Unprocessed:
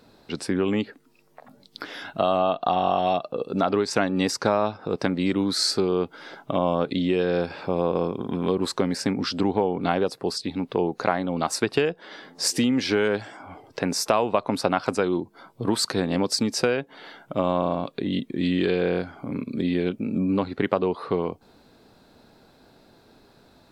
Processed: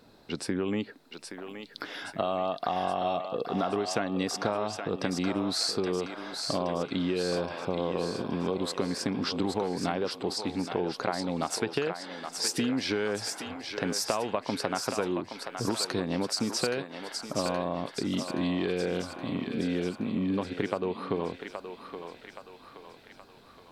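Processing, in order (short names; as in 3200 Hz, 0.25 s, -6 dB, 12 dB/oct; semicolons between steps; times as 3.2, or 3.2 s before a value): compressor 3:1, threshold -24 dBFS, peak gain reduction 7 dB; on a send: thinning echo 0.822 s, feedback 60%, high-pass 610 Hz, level -5.5 dB; on the sum: gain -2.5 dB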